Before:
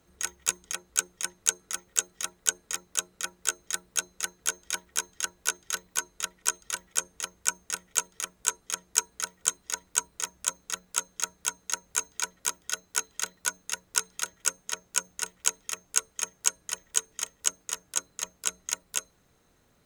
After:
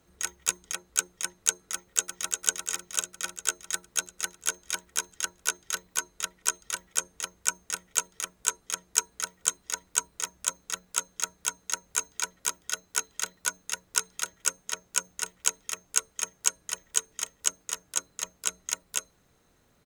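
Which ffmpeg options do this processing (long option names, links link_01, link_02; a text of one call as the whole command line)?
ffmpeg -i in.wav -filter_complex "[0:a]asplit=2[link_01][link_02];[link_02]afade=type=in:start_time=1.73:duration=0.01,afade=type=out:start_time=2.34:duration=0.01,aecho=0:1:350|700|1050|1400|1750|2100|2450|2800|3150|3500:0.595662|0.38718|0.251667|0.163584|0.106329|0.0691141|0.0449242|0.0292007|0.0189805|0.0123373[link_03];[link_01][link_03]amix=inputs=2:normalize=0" out.wav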